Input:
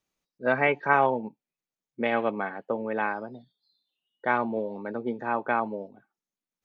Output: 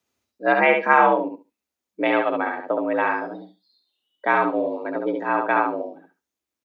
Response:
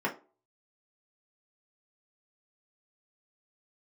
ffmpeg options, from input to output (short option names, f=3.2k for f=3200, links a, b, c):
-af "afreqshift=65,aecho=1:1:70|140|210:0.631|0.101|0.0162,volume=5dB"